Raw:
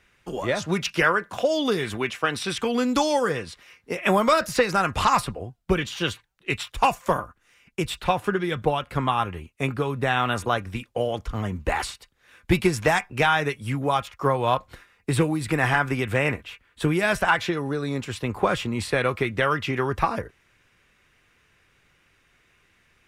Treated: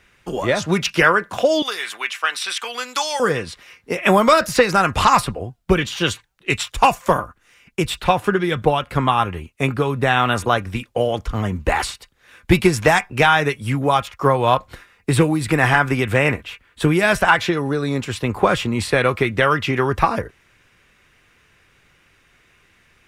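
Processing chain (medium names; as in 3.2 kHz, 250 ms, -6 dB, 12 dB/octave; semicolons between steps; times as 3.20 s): 1.62–3.20 s: high-pass 1.1 kHz 12 dB/octave; 6.06–6.77 s: dynamic bell 7 kHz, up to +6 dB, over -50 dBFS, Q 1.4; trim +6 dB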